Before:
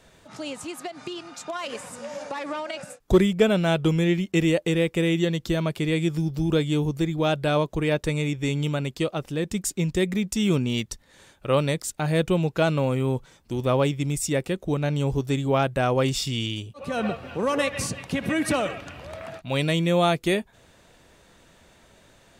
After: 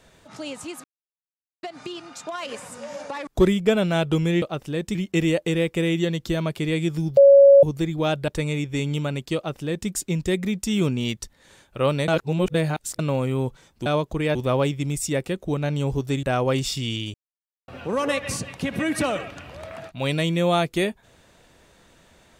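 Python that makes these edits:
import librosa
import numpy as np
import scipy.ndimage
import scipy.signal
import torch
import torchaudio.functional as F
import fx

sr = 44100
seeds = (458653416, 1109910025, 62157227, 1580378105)

y = fx.edit(x, sr, fx.insert_silence(at_s=0.84, length_s=0.79),
    fx.cut(start_s=2.48, length_s=0.52),
    fx.bleep(start_s=6.37, length_s=0.46, hz=557.0, db=-7.5),
    fx.move(start_s=7.48, length_s=0.49, to_s=13.55),
    fx.duplicate(start_s=9.05, length_s=0.53, to_s=4.15),
    fx.reverse_span(start_s=11.77, length_s=0.91),
    fx.cut(start_s=15.43, length_s=0.3),
    fx.silence(start_s=16.64, length_s=0.54), tone=tone)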